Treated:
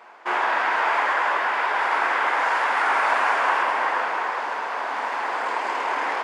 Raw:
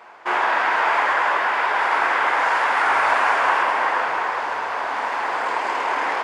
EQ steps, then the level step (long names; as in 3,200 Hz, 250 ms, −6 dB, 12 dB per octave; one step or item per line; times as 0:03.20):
linear-phase brick-wall high-pass 180 Hz
−2.5 dB